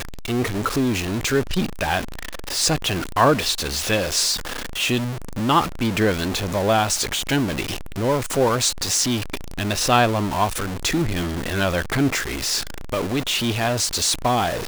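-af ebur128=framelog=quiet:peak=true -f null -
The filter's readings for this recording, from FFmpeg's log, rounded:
Integrated loudness:
  I:         -21.5 LUFS
  Threshold: -31.5 LUFS
Loudness range:
  LRA:         1.7 LU
  Threshold: -41.4 LUFS
  LRA low:   -22.5 LUFS
  LRA high:  -20.8 LUFS
True peak:
  Peak:       -2.3 dBFS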